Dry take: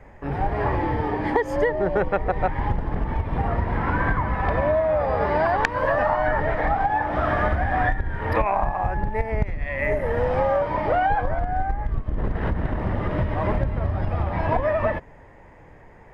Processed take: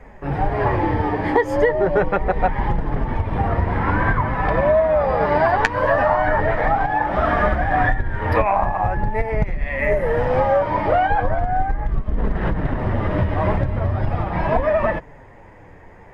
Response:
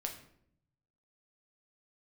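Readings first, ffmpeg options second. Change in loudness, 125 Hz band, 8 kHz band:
+4.0 dB, +3.5 dB, can't be measured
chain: -af "flanger=delay=4.1:depth=7.4:regen=-32:speed=0.41:shape=triangular,volume=7.5dB"

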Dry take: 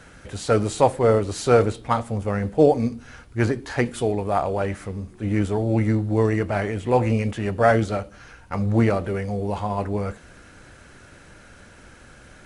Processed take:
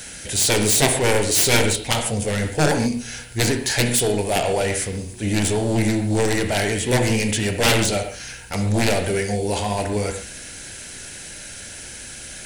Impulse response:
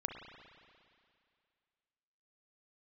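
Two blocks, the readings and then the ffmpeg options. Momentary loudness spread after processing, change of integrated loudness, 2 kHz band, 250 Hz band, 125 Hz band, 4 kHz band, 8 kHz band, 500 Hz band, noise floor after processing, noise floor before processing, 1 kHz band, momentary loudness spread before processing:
17 LU, +2.5 dB, +7.5 dB, +1.0 dB, +0.5 dB, +16.5 dB, +18.5 dB, −1.0 dB, −37 dBFS, −48 dBFS, −1.0 dB, 11 LU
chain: -filter_complex "[0:a]crystalizer=i=9:c=0,aeval=exprs='1.19*(cos(1*acos(clip(val(0)/1.19,-1,1)))-cos(1*PI/2))+0.596*(cos(7*acos(clip(val(0)/1.19,-1,1)))-cos(7*PI/2))':channel_layout=same,equalizer=frequency=1200:width=2.6:gain=-12.5[link_01];[1:a]atrim=start_sample=2205,atrim=end_sample=6615[link_02];[link_01][link_02]afir=irnorm=-1:irlink=0,volume=-4dB"

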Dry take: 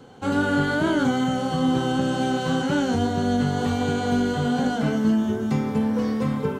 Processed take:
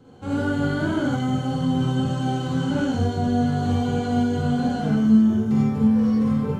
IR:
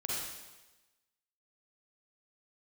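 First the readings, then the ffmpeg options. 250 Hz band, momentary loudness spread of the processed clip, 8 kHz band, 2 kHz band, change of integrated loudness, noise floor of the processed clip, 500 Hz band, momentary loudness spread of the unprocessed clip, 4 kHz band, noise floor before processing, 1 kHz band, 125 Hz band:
+2.0 dB, 7 LU, −5.0 dB, −5.0 dB, +1.5 dB, −28 dBFS, −3.0 dB, 3 LU, −4.0 dB, −29 dBFS, −2.5 dB, +4.0 dB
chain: -filter_complex "[0:a]lowshelf=frequency=290:gain=10.5[link_01];[1:a]atrim=start_sample=2205,afade=type=out:start_time=0.17:duration=0.01,atrim=end_sample=7938[link_02];[link_01][link_02]afir=irnorm=-1:irlink=0,volume=-7.5dB"

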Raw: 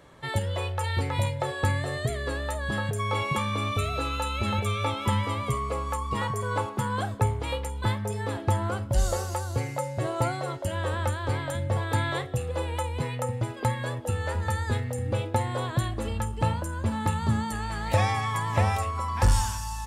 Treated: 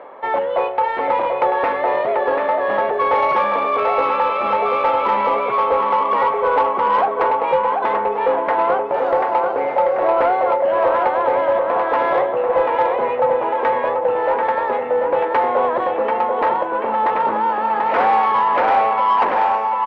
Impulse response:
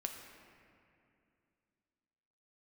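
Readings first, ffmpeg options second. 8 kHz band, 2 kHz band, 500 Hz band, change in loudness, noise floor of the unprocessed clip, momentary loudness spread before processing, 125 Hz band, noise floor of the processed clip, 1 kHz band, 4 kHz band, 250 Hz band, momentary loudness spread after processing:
below −25 dB, +8.5 dB, +15.5 dB, +11.0 dB, −35 dBFS, 5 LU, below −20 dB, −22 dBFS, +16.0 dB, −1.0 dB, +2.0 dB, 3 LU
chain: -filter_complex "[0:a]equalizer=frequency=780:width=2.3:gain=7.5,areverse,acompressor=mode=upward:threshold=-36dB:ratio=2.5,areverse,aeval=exprs='0.376*sin(PI/2*3.16*val(0)/0.376)':channel_layout=same,highpass=frequency=310:width=0.5412,highpass=frequency=310:width=1.3066,equalizer=frequency=320:width_type=q:width=4:gain=-5,equalizer=frequency=510:width_type=q:width=4:gain=5,equalizer=frequency=1000:width_type=q:width=4:gain=3,equalizer=frequency=1700:width_type=q:width=4:gain=-5,lowpass=frequency=2200:width=0.5412,lowpass=frequency=2200:width=1.3066,asplit=2[link_01][link_02];[link_02]aecho=0:1:738|1476|2214|2952|3690:0.562|0.231|0.0945|0.0388|0.0159[link_03];[link_01][link_03]amix=inputs=2:normalize=0,acontrast=34,volume=-7dB"

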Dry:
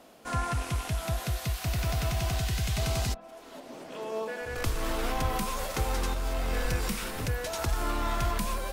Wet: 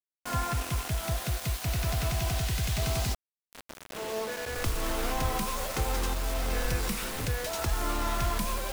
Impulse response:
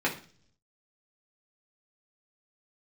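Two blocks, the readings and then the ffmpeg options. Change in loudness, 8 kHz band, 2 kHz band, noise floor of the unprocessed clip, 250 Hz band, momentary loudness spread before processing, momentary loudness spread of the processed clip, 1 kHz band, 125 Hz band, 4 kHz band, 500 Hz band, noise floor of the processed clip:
+0.5 dB, +2.5 dB, +0.5 dB, −48 dBFS, −0.5 dB, 5 LU, 4 LU, 0.0 dB, −0.5 dB, +1.0 dB, −0.5 dB, below −85 dBFS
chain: -af "acontrast=88,acrusher=bits=4:mix=0:aa=0.000001,volume=-7.5dB"

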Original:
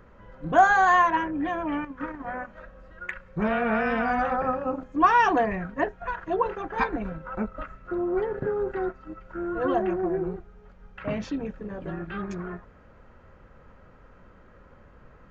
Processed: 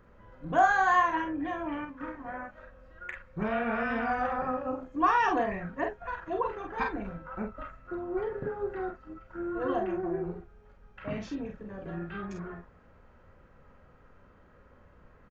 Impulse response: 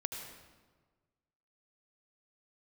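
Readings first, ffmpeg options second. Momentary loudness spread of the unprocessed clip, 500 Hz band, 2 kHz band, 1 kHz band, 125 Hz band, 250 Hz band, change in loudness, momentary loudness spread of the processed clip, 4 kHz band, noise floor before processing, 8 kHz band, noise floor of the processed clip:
18 LU, −5.5 dB, −5.0 dB, −5.0 dB, −5.0 dB, −5.5 dB, −5.0 dB, 18 LU, −5.0 dB, −53 dBFS, can't be measured, −58 dBFS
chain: -af "aecho=1:1:35|47:0.376|0.531,volume=-6.5dB"

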